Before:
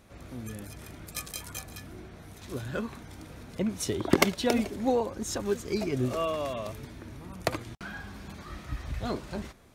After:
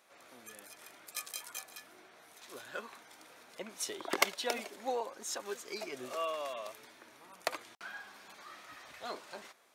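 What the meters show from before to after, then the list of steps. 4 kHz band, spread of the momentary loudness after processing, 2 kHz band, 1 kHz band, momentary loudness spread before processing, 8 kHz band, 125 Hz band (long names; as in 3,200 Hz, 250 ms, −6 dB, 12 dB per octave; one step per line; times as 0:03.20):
−3.5 dB, 18 LU, −3.5 dB, −4.5 dB, 17 LU, −3.5 dB, −29.5 dB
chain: high-pass filter 650 Hz 12 dB per octave
level −3.5 dB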